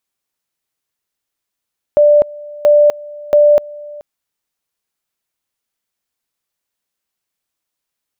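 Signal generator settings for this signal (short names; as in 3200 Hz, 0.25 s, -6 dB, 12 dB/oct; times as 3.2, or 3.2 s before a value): two-level tone 590 Hz -5 dBFS, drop 22.5 dB, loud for 0.25 s, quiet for 0.43 s, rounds 3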